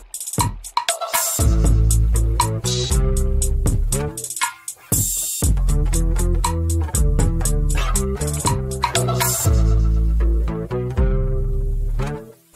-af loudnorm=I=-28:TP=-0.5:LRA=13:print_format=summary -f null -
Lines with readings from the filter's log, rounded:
Input Integrated:    -20.6 LUFS
Input True Peak:      -4.2 dBTP
Input LRA:             2.8 LU
Input Threshold:     -30.7 LUFS